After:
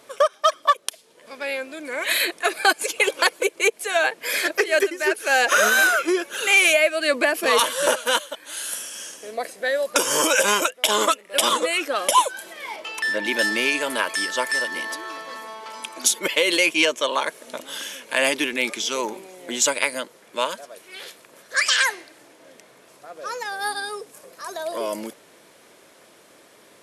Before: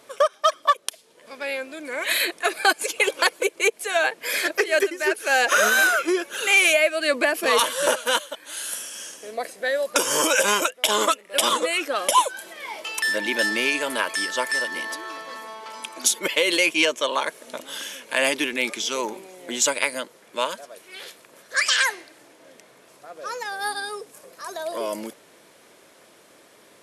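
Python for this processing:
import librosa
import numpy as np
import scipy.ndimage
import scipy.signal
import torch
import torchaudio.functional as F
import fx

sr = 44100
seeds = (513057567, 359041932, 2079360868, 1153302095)

y = fx.lowpass(x, sr, hz=3200.0, slope=6, at=(12.76, 13.25))
y = F.gain(torch.from_numpy(y), 1.0).numpy()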